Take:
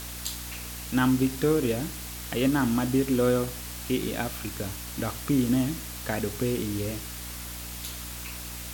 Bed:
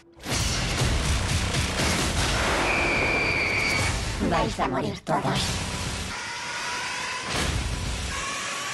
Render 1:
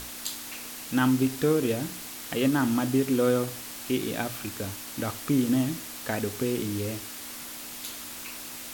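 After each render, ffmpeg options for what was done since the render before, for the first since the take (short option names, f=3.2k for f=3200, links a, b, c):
-af "bandreject=f=60:t=h:w=6,bandreject=f=120:t=h:w=6,bandreject=f=180:t=h:w=6"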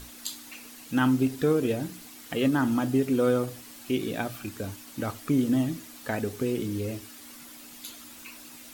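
-af "afftdn=nr=9:nf=-40"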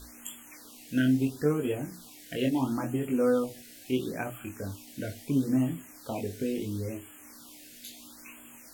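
-af "flanger=delay=20:depth=3.8:speed=0.61,afftfilt=real='re*(1-between(b*sr/1024,980*pow(4900/980,0.5+0.5*sin(2*PI*0.74*pts/sr))/1.41,980*pow(4900/980,0.5+0.5*sin(2*PI*0.74*pts/sr))*1.41))':imag='im*(1-between(b*sr/1024,980*pow(4900/980,0.5+0.5*sin(2*PI*0.74*pts/sr))/1.41,980*pow(4900/980,0.5+0.5*sin(2*PI*0.74*pts/sr))*1.41))':win_size=1024:overlap=0.75"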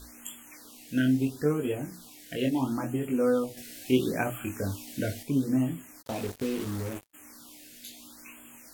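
-filter_complex "[0:a]asettb=1/sr,asplit=3[a][b][c];[a]atrim=end=3.574[d];[b]atrim=start=3.57:end=5.23,asetpts=PTS-STARTPTS,afade=t=in:d=0.004:c=qsin,afade=t=out:st=1.656:d=0.004:c=qsin,acontrast=31[e];[c]atrim=start=5.226[f];[d][e]acrossfade=d=0.004:c1=hsin:c2=qsin[g];[g][f]acrossfade=d=0.004:c1=qsin:c2=hsin,asplit=3[h][i][j];[h]afade=t=out:st=6.01:d=0.02[k];[i]acrusher=bits=5:mix=0:aa=0.5,afade=t=in:st=6.01:d=0.02,afade=t=out:st=7.13:d=0.02[l];[j]afade=t=in:st=7.13:d=0.02[m];[k][l][m]amix=inputs=3:normalize=0"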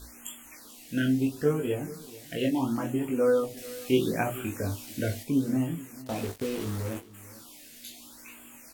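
-filter_complex "[0:a]asplit=2[a][b];[b]adelay=18,volume=-7dB[c];[a][c]amix=inputs=2:normalize=0,aecho=1:1:438:0.119"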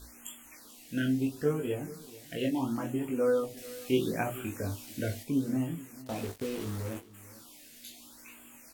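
-af "volume=-3.5dB"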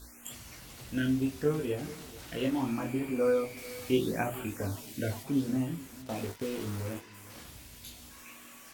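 -filter_complex "[1:a]volume=-25dB[a];[0:a][a]amix=inputs=2:normalize=0"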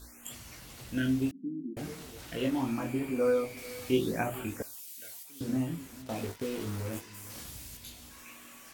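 -filter_complex "[0:a]asettb=1/sr,asplit=3[a][b][c];[a]atrim=end=1.314[d];[b]atrim=start=1.31:end=1.77,asetpts=PTS-STARTPTS,afade=t=in:d=0.004:c=qsin,afade=t=out:st=0.456:d=0.004:c=qsin,asuperpass=centerf=240:order=12:qfactor=1.5[e];[c]atrim=start=1.766[f];[d][e]acrossfade=d=0.004:c1=hsin:c2=qsin[g];[g][f]acrossfade=d=0.004:c1=qsin:c2=hsin,asettb=1/sr,asplit=3[h][i][j];[h]atrim=end=4.624[k];[i]atrim=start=4.62:end=5.41,asetpts=PTS-STARTPTS,afade=t=in:d=0.004:c=qsin,afade=t=out:st=0.786:d=0.004:c=qsin,aderivative[l];[j]atrim=start=5.406[m];[k][l]acrossfade=d=0.004:c1=hsin:c2=qsin[n];[n][m]acrossfade=d=0.004:c1=qsin:c2=hsin,asettb=1/sr,asplit=3[o][p][q];[o]atrim=end=6.934[r];[p]atrim=start=6.93:end=7.77,asetpts=PTS-STARTPTS,afade=t=in:d=0.004:c=qsin,afade=t=out:st=0.836:d=0.004:c=qsin,bass=f=250:g=3,treble=f=4k:g=7[s];[q]atrim=start=7.766[t];[r][s]acrossfade=d=0.004:c1=hsin:c2=qsin[u];[u][t]acrossfade=d=0.004:c1=qsin:c2=hsin"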